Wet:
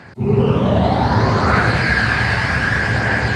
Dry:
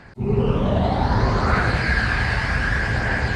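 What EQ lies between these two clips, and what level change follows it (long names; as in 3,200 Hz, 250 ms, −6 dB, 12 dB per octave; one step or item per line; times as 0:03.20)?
high-pass filter 79 Hz 24 dB per octave
+5.5 dB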